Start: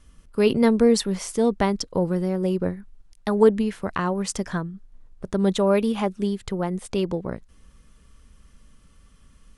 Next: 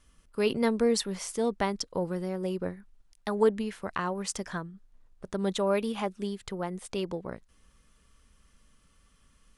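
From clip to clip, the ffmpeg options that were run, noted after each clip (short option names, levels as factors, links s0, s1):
-af "lowshelf=f=410:g=-7,volume=0.631"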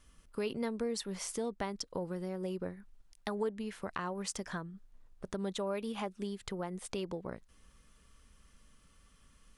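-af "acompressor=threshold=0.0141:ratio=2.5"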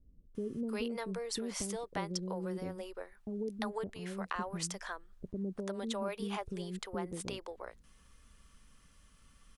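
-filter_complex "[0:a]acrossover=split=440[s0][s1];[s1]adelay=350[s2];[s0][s2]amix=inputs=2:normalize=0,volume=1.12"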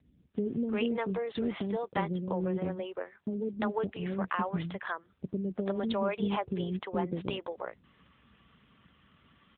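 -af "volume=2.37" -ar 8000 -c:a libopencore_amrnb -b:a 7950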